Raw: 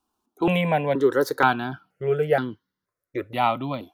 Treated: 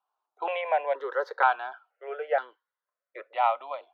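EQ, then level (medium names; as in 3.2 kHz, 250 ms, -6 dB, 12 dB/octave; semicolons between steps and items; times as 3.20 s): steep high-pass 550 Hz 36 dB/octave; distance through air 240 m; treble shelf 2.7 kHz -8.5 dB; 0.0 dB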